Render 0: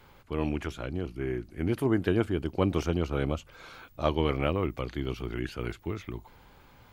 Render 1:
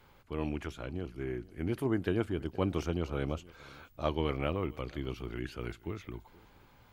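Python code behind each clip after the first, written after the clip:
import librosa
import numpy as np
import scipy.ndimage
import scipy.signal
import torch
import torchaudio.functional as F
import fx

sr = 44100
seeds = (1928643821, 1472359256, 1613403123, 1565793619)

y = x + 10.0 ** (-22.0 / 20.0) * np.pad(x, (int(475 * sr / 1000.0), 0))[:len(x)]
y = y * librosa.db_to_amplitude(-5.0)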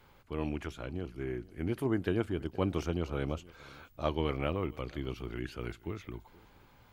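y = fx.end_taper(x, sr, db_per_s=510.0)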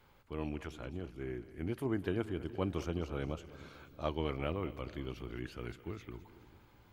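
y = fx.echo_split(x, sr, split_hz=330.0, low_ms=328, high_ms=208, feedback_pct=52, wet_db=-15.5)
y = y * librosa.db_to_amplitude(-4.0)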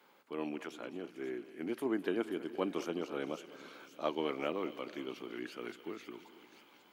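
y = scipy.signal.sosfilt(scipy.signal.butter(4, 230.0, 'highpass', fs=sr, output='sos'), x)
y = fx.echo_wet_highpass(y, sr, ms=534, feedback_pct=71, hz=2600.0, wet_db=-10.5)
y = y * librosa.db_to_amplitude(2.0)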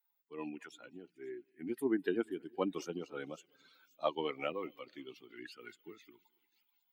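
y = fx.bin_expand(x, sr, power=2.0)
y = y * librosa.db_to_amplitude(4.0)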